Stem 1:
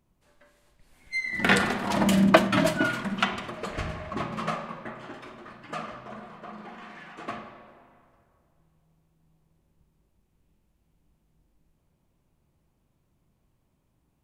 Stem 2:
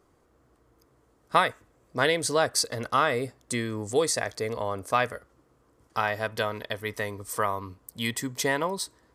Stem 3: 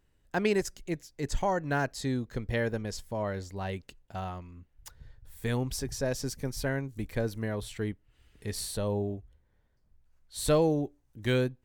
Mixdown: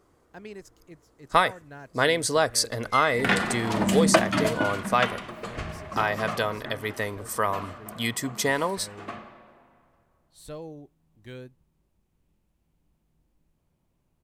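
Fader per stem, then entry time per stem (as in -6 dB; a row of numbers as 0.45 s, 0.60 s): -2.0 dB, +1.5 dB, -15.0 dB; 1.80 s, 0.00 s, 0.00 s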